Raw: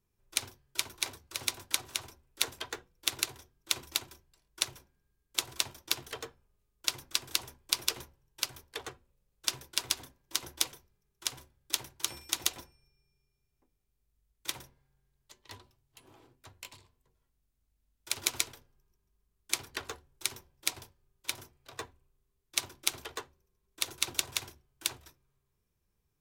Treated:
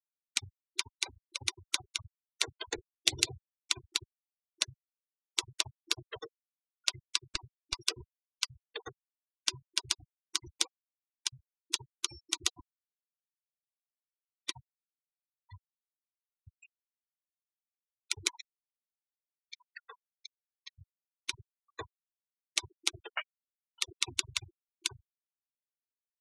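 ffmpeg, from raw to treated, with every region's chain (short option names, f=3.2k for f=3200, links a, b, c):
-filter_complex "[0:a]asettb=1/sr,asplit=3[a][b][c];[a]atrim=end=2.684[d];[b]atrim=start=2.68:end=3.39,asetpts=PTS-STARTPTS,afade=t=in:d=0.004:c=qsin,afade=t=out:st=0.706:d=0.004:c=qsin,equalizer=f=1.3k:t=o:w=0.7:g=-9.5,bandreject=f=105.2:t=h:w=4,bandreject=f=210.4:t=h:w=4,bandreject=f=315.6:t=h:w=4,bandreject=f=420.8:t=h:w=4,bandreject=f=526:t=h:w=4,bandreject=f=631.2:t=h:w=4,bandreject=f=736.4:t=h:w=4,bandreject=f=841.6:t=h:w=4,bandreject=f=946.8:t=h:w=4,bandreject=f=1.052k:t=h:w=4,bandreject=f=1.1572k:t=h:w=4,bandreject=f=1.2624k:t=h:w=4,bandreject=f=1.3676k:t=h:w=4,bandreject=f=1.4728k:t=h:w=4,acontrast=31[e];[c]atrim=start=3.386[f];[d][e]acrossfade=d=0.004:c1=hsin:c2=qsin[g];[g][f]acrossfade=d=0.004:c1=qsin:c2=hsin,asettb=1/sr,asplit=3[h][i][j];[h]atrim=end=7.234[k];[i]atrim=start=7.23:end=7.79,asetpts=PTS-STARTPTS,afade=t=in:d=0.004:c=qsin,afade=t=out:st=0.556:d=0.004:c=qsin,aeval=exprs='(tanh(5.62*val(0)+0.25)-tanh(0.25))/5.62':c=same,adynamicsmooth=sensitivity=2:basefreq=6.5k,asuperstop=centerf=3200:order=4:qfactor=7.4[l];[j]atrim=start=7.786[m];[k][l]acrossfade=d=0.004:c1=hsin:c2=qsin[n];[n][m]acrossfade=d=0.004:c1=qsin:c2=hsin,asettb=1/sr,asplit=3[o][p][q];[o]atrim=end=18.284[r];[p]atrim=start=18.28:end=20.79,asetpts=PTS-STARTPTS,afade=t=in:d=0.004:c=qsin,afade=t=out:st=2.506:d=0.004:c=qsin,aeval=exprs='if(lt(val(0),0),0.447*val(0),val(0))':c=same,highpass=f=350:w=0.5412,highpass=f=350:w=1.3066,equalizer=f=410:t=q:w=4:g=-8,equalizer=f=980:t=q:w=4:g=4,equalizer=f=1.9k:t=q:w=4:g=5,lowpass=f=6.9k:w=0.5412,lowpass=f=6.9k:w=1.3066,acompressor=threshold=-37dB:ratio=12:attack=3.2:release=140:knee=1:detection=peak[s];[q]atrim=start=20.786[t];[r][s]acrossfade=d=0.004:c1=hsin:c2=qsin[u];[u][t]acrossfade=d=0.004:c1=qsin:c2=hsin,asettb=1/sr,asplit=3[v][w][x];[v]atrim=end=23.164[y];[w]atrim=start=23.16:end=23.8,asetpts=PTS-STARTPTS,afade=t=in:d=0.004:c=qsin,afade=t=out:st=0.636:d=0.004:c=qsin,lowpass=f=2.8k:t=q:w=0.5098,lowpass=f=2.8k:t=q:w=0.6013,lowpass=f=2.8k:t=q:w=0.9,lowpass=f=2.8k:t=q:w=2.563,afreqshift=-3300,equalizer=f=960:w=0.74:g=12.5[z];[x]atrim=start=23.796[aa];[y][z]acrossfade=d=0.004:c1=hsin:c2=qsin[ab];[ab][aa]acrossfade=d=0.004:c1=qsin:c2=hsin,afftfilt=real='re*gte(hypot(re,im),0.02)':imag='im*gte(hypot(re,im),0.02)':win_size=1024:overlap=0.75,lowpass=f=9k:w=0.5412,lowpass=f=9k:w=1.3066,lowshelf=f=86:g=11"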